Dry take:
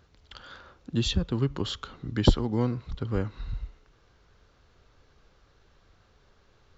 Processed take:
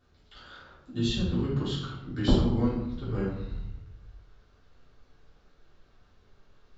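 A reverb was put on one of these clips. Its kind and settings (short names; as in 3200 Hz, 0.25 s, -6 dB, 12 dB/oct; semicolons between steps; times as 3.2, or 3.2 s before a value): shoebox room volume 200 m³, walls mixed, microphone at 3.4 m; gain -13 dB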